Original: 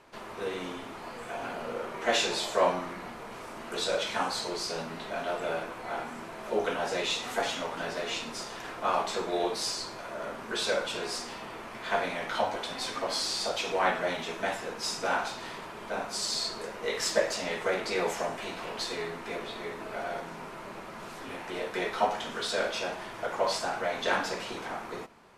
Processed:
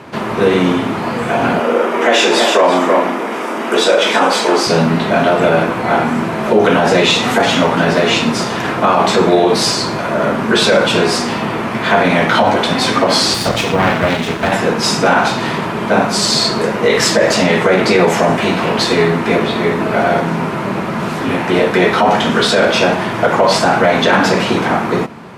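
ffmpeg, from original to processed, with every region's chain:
-filter_complex "[0:a]asettb=1/sr,asplit=3[s0][s1][s2];[s0]atrim=end=1.594[s3];[s1]atrim=start=1.59:end=4.67,asetpts=PTS-STARTPTS,afade=t=in:d=0.004:c=qsin,afade=t=out:st=3.076:d=0.004:c=qsin,highpass=f=260:w=0.5412,highpass=f=260:w=1.3066,bandreject=f=4200:w=8.1,aecho=1:1:323:0.335,atrim=end_sample=135828[s4];[s2]atrim=start=4.666[s5];[s3][s4]acrossfade=d=0.004:c1=hsin:c2=qsin[s6];[s6][s5]acrossfade=d=0.004:c1=qsin:c2=hsin,asettb=1/sr,asplit=3[s7][s8][s9];[s7]atrim=end=13.344[s10];[s8]atrim=start=13.34:end=14.52,asetpts=PTS-STARTPTS,afade=t=in:d=0.004:c=qsin,afade=t=out:st=1.176:d=0.004:c=qsin,aeval=exprs='max(val(0),0)':c=same,acrusher=bits=8:mode=log:mix=0:aa=0.000001[s11];[s9]atrim=start=14.516[s12];[s10][s11]acrossfade=d=0.004:c1=hsin:c2=qsin[s13];[s13][s12]acrossfade=d=0.004:c1=qsin:c2=hsin,highpass=160,bass=f=250:g=15,treble=f=4000:g=-6,alimiter=level_in=12.6:limit=0.891:release=50:level=0:latency=1,volume=0.891"

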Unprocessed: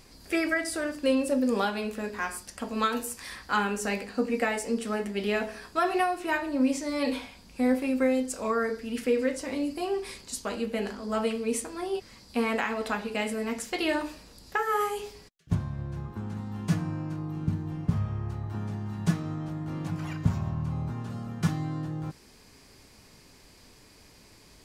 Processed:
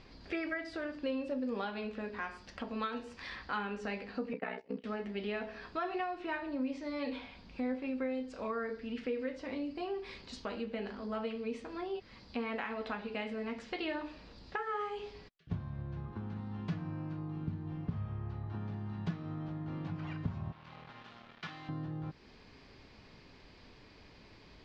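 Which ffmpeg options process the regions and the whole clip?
-filter_complex "[0:a]asettb=1/sr,asplit=3[s0][s1][s2];[s0]atrim=end=4.334[s3];[s1]atrim=start=4.33:end=4.84,asetpts=PTS-STARTPTS,afade=t=in:d=0.004:c=qsin,afade=t=out:st=0.506:d=0.004:c=qsin,agate=range=0.112:threshold=0.0251:ratio=16:release=100:detection=peak,aeval=exprs='val(0)*sin(2*PI*31*n/s)':c=same,highpass=120,lowpass=3300[s4];[s2]atrim=start=4.836[s5];[s3][s4]acrossfade=d=0.004:c1=hsin:c2=qsin[s6];[s6][s5]acrossfade=d=0.004:c1=qsin:c2=hsin,asettb=1/sr,asplit=3[s7][s8][s9];[s7]atrim=end=20.524[s10];[s8]atrim=start=20.52:end=21.69,asetpts=PTS-STARTPTS,afade=t=in:d=0.004:c=qsin,afade=t=out:st=1.166:d=0.004:c=qsin,bandpass=f=2900:t=q:w=0.67,acrusher=bits=7:mix=0:aa=0.5[s11];[s9]atrim=start=21.686[s12];[s10][s11]acrossfade=d=0.004:c1=hsin:c2=qsin[s13];[s13][s12]acrossfade=d=0.004:c1=qsin:c2=hsin,lowpass=f=4200:w=0.5412,lowpass=f=4200:w=1.3066,acompressor=threshold=0.01:ratio=2,volume=0.891"

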